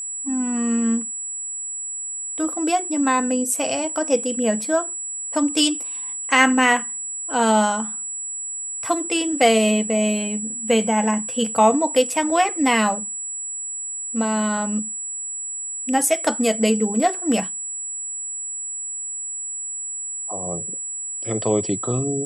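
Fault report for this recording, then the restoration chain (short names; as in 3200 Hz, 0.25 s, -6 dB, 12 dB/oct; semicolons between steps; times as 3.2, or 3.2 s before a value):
tone 7800 Hz -27 dBFS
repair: notch 7800 Hz, Q 30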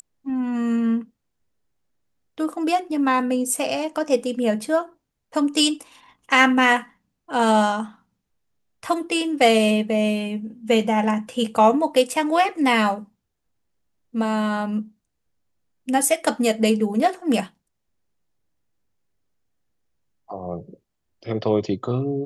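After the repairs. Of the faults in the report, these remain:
none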